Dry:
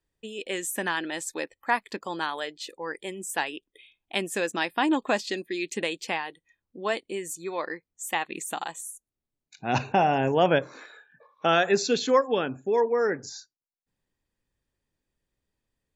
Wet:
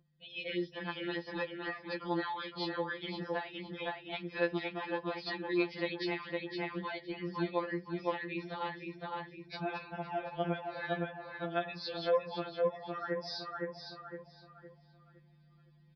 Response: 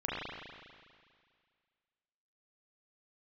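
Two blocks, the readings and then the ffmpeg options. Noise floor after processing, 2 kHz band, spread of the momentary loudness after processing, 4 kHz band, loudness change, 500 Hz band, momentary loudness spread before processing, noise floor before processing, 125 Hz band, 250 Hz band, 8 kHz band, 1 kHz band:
-63 dBFS, -9.0 dB, 8 LU, -8.5 dB, -10.0 dB, -9.0 dB, 14 LU, under -85 dBFS, -6.5 dB, -6.5 dB, under -30 dB, -11.0 dB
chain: -filter_complex "[0:a]bandreject=f=2.8k:w=10,acompressor=threshold=-36dB:ratio=6,aeval=exprs='val(0)+0.00282*(sin(2*PI*50*n/s)+sin(2*PI*2*50*n/s)/2+sin(2*PI*3*50*n/s)/3+sin(2*PI*4*50*n/s)/4+sin(2*PI*5*50*n/s)/5)':c=same,aresample=11025,aresample=44100,asplit=2[a][b];[b]adelay=512,lowpass=f=2.8k:p=1,volume=-5dB,asplit=2[c][d];[d]adelay=512,lowpass=f=2.8k:p=1,volume=0.38,asplit=2[e][f];[f]adelay=512,lowpass=f=2.8k:p=1,volume=0.38,asplit=2[g][h];[h]adelay=512,lowpass=f=2.8k:p=1,volume=0.38,asplit=2[i][j];[j]adelay=512,lowpass=f=2.8k:p=1,volume=0.38[k];[a][c][e][g][i][k]amix=inputs=6:normalize=0,asplit=2[l][m];[1:a]atrim=start_sample=2205,atrim=end_sample=4410[n];[m][n]afir=irnorm=-1:irlink=0,volume=-24.5dB[o];[l][o]amix=inputs=2:normalize=0,dynaudnorm=f=100:g=9:m=11dB,highpass=47,alimiter=limit=-23dB:level=0:latency=1:release=462,afftfilt=real='re*2.83*eq(mod(b,8),0)':imag='im*2.83*eq(mod(b,8),0)':win_size=2048:overlap=0.75"

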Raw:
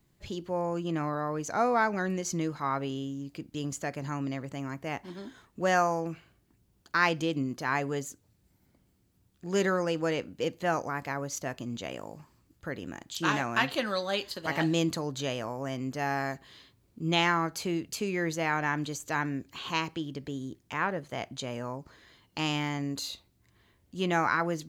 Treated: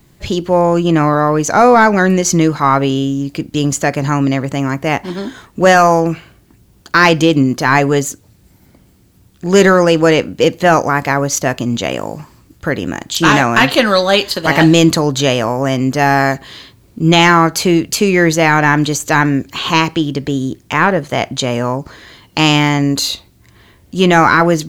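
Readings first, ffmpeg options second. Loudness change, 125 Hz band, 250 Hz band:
+18.5 dB, +19.5 dB, +19.5 dB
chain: -af "apsyclip=21dB,aeval=exprs='1.06*(cos(1*acos(clip(val(0)/1.06,-1,1)))-cos(1*PI/2))+0.0075*(cos(8*acos(clip(val(0)/1.06,-1,1)))-cos(8*PI/2))':c=same,volume=-1.5dB"

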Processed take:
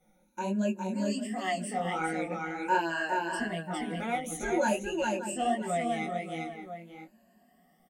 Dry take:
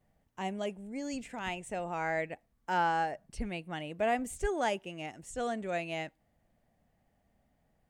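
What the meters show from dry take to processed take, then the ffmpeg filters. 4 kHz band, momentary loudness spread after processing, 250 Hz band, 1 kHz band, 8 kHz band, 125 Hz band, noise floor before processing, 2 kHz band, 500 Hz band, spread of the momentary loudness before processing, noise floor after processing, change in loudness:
+3.5 dB, 10 LU, +7.0 dB, +3.0 dB, +6.5 dB, +5.0 dB, -74 dBFS, +4.0 dB, +3.0 dB, 10 LU, -66 dBFS, +3.5 dB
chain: -filter_complex "[0:a]afftfilt=real='re*pow(10,20/40*sin(2*PI*(1.4*log(max(b,1)*sr/1024/100)/log(2)-(0.49)*(pts-256)/sr)))':imag='im*pow(10,20/40*sin(2*PI*(1.4*log(max(b,1)*sr/1024/100)/log(2)-(0.49)*(pts-256)/sr)))':win_size=1024:overlap=0.75,aecho=1:1:5.5:0.61,asplit=2[a][b];[b]aecho=0:1:407:0.631[c];[a][c]amix=inputs=2:normalize=0,crystalizer=i=0.5:c=0,lowshelf=f=160:t=q:w=3:g=-11.5,asplit=2[d][e];[e]adelay=577.3,volume=-12dB,highshelf=f=4k:g=-13[f];[d][f]amix=inputs=2:normalize=0,asplit=2[g][h];[h]acompressor=threshold=-38dB:ratio=16,volume=3dB[i];[g][i]amix=inputs=2:normalize=0,bandreject=f=50:t=h:w=6,bandreject=f=100:t=h:w=6,bandreject=f=150:t=h:w=6,bandreject=f=200:t=h:w=6,bandreject=f=250:t=h:w=6,bandreject=f=300:t=h:w=6,bandreject=f=350:t=h:w=6,bandreject=f=400:t=h:w=6,bandreject=f=450:t=h:w=6,flanger=delay=18:depth=6.4:speed=1.4,volume=-3dB" -ar 44100 -c:a libvorbis -b:a 64k

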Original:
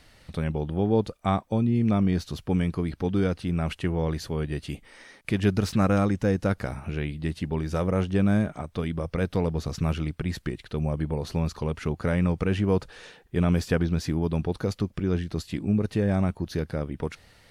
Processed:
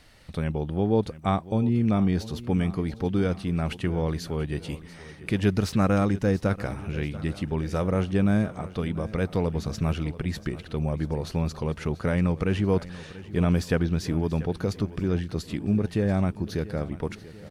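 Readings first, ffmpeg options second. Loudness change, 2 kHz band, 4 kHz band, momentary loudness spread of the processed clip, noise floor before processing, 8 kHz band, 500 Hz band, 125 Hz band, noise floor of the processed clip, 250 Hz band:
0.0 dB, 0.0 dB, 0.0 dB, 9 LU, -57 dBFS, 0.0 dB, 0.0 dB, 0.0 dB, -45 dBFS, 0.0 dB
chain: -af "aecho=1:1:687|1374|2061|2748|3435:0.141|0.0763|0.0412|0.0222|0.012"

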